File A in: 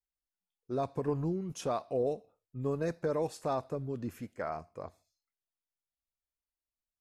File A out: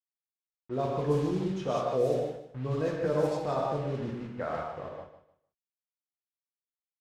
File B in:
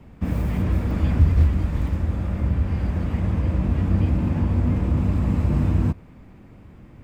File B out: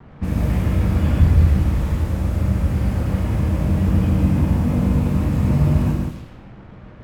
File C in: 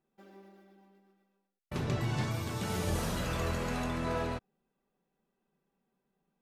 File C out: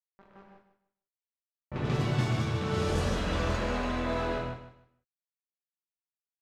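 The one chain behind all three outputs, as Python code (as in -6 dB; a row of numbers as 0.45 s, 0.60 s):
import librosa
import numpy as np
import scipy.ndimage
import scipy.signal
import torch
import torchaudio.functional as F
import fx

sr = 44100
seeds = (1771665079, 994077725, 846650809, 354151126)

p1 = fx.quant_dither(x, sr, seeds[0], bits=8, dither='none')
p2 = fx.rev_gated(p1, sr, seeds[1], gate_ms=220, shape='flat', drr_db=-1.5)
p3 = fx.env_lowpass(p2, sr, base_hz=1400.0, full_db=-19.5)
y = p3 + fx.echo_feedback(p3, sr, ms=152, feedback_pct=24, wet_db=-12, dry=0)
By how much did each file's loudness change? +4.0 LU, +3.5 LU, +3.5 LU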